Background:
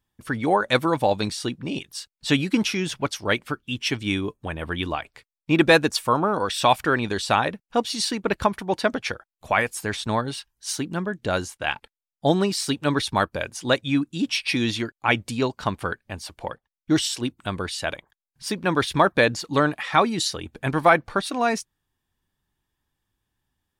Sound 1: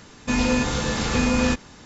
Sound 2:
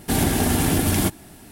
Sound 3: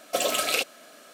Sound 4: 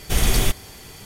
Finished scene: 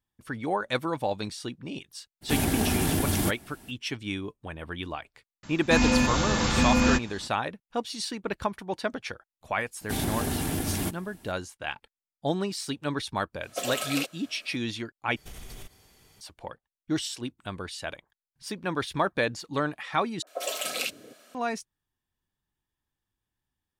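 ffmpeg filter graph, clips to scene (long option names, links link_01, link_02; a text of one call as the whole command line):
ffmpeg -i bed.wav -i cue0.wav -i cue1.wav -i cue2.wav -i cue3.wav -filter_complex "[2:a]asplit=2[link_01][link_02];[3:a]asplit=2[link_03][link_04];[0:a]volume=-8dB[link_05];[1:a]bandreject=frequency=450:width=5[link_06];[4:a]acompressor=threshold=-21dB:ratio=6:attack=3.2:release=140:knee=1:detection=peak[link_07];[link_04]acrossover=split=360|1200[link_08][link_09][link_10];[link_10]adelay=50[link_11];[link_08]adelay=280[link_12];[link_12][link_09][link_11]amix=inputs=3:normalize=0[link_13];[link_05]asplit=3[link_14][link_15][link_16];[link_14]atrim=end=15.164[link_17];[link_07]atrim=end=1.05,asetpts=PTS-STARTPTS,volume=-17.5dB[link_18];[link_15]atrim=start=16.206:end=20.224[link_19];[link_13]atrim=end=1.13,asetpts=PTS-STARTPTS,volume=-5dB[link_20];[link_16]atrim=start=21.346[link_21];[link_01]atrim=end=1.51,asetpts=PTS-STARTPTS,volume=-6dB,afade=type=in:duration=0.02,afade=type=out:start_time=1.49:duration=0.02,adelay=2210[link_22];[link_06]atrim=end=1.85,asetpts=PTS-STARTPTS,volume=-1dB,afade=type=in:duration=0.004:curve=hsin,afade=type=out:start_time=1.846:duration=0.004:curve=hsin,adelay=5430[link_23];[link_02]atrim=end=1.51,asetpts=PTS-STARTPTS,volume=-9.5dB,afade=type=in:duration=0.004:curve=hsin,afade=type=out:start_time=1.506:duration=0.004:curve=hsin,adelay=9810[link_24];[link_03]atrim=end=1.13,asetpts=PTS-STARTPTS,volume=-6.5dB,afade=type=in:duration=0.004:curve=hsin,afade=type=out:start_time=1.126:duration=0.004:curve=hsin,adelay=13430[link_25];[link_17][link_18]acrossfade=duration=0.004:curve1=hsin:curve2=hsin[link_26];[link_26][link_19]acrossfade=duration=0.004:curve1=hsin:curve2=hsin[link_27];[link_27][link_20]acrossfade=duration=0.004:curve1=hsin:curve2=hsin[link_28];[link_28][link_21]acrossfade=duration=0.004:curve1=hsin:curve2=hsin[link_29];[link_29][link_22][link_23][link_24][link_25]amix=inputs=5:normalize=0" out.wav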